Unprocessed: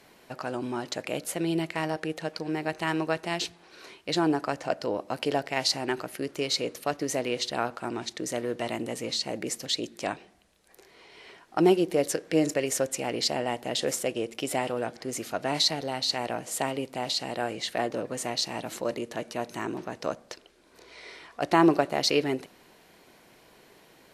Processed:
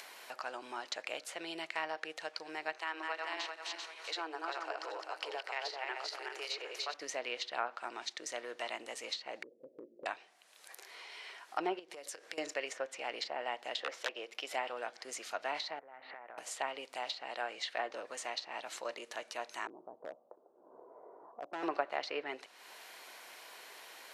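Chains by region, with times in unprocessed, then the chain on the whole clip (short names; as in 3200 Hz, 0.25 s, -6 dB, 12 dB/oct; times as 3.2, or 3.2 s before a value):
2.78–6.94 regenerating reverse delay 0.195 s, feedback 53%, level -3 dB + compressor 1.5:1, threshold -29 dBFS + rippled Chebyshev high-pass 310 Hz, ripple 3 dB
9.43–10.06 Chebyshev low-pass 560 Hz, order 5 + compressor 3:1, threshold -35 dBFS
11.79–12.38 HPF 52 Hz + compressor 10:1, threshold -34 dBFS
13.82–14.54 HPF 270 Hz + bell 8600 Hz -11.5 dB 0.78 oct + wrapped overs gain 19.5 dB
15.79–16.38 steep low-pass 2100 Hz + compressor 8:1, threshold -42 dBFS
19.67–21.63 Bessel low-pass 520 Hz, order 8 + overloaded stage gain 25.5 dB
whole clip: HPF 820 Hz 12 dB/oct; treble ducked by the level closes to 1700 Hz, closed at -26 dBFS; upward compressor, threshold -38 dBFS; gain -3.5 dB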